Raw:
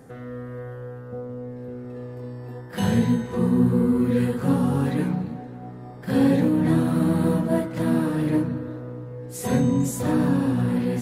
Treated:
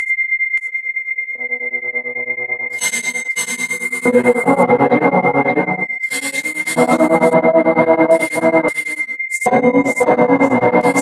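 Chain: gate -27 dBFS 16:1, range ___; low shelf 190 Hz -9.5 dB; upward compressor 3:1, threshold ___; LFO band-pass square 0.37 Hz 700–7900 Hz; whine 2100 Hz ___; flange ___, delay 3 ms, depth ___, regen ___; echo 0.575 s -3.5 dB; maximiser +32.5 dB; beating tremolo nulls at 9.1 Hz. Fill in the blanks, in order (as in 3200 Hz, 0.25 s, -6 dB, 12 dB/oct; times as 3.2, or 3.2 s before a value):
-20 dB, -44 dBFS, -40 dBFS, 0.71 Hz, 4.6 ms, -37%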